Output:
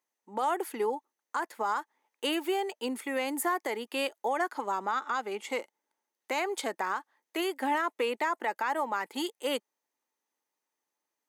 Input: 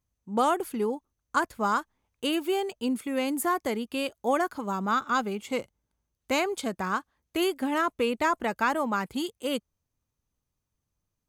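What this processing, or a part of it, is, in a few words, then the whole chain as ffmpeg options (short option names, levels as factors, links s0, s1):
laptop speaker: -filter_complex "[0:a]asettb=1/sr,asplit=3[s0][s1][s2];[s0]atrim=end=4.264[s3];[s1]atrim=start=4.26:end=5.48,asetpts=PTS-STARTPTS,afade=t=in:d=0.004:c=qsin,afade=t=out:st=1.216:d=0.004:c=qsin,lowpass=12000[s4];[s2]atrim=start=5.476[s5];[s3][s4]acrossfade=d=0.004:c1=hsin:c2=qsin[s6];[s6][s5]acrossfade=d=0.004:c1=qsin:c2=hsin,highpass=f=310:w=0.5412,highpass=f=310:w=1.3066,equalizer=f=870:t=o:w=0.25:g=9,equalizer=f=1900:t=o:w=0.34:g=8,alimiter=limit=0.0944:level=0:latency=1:release=160"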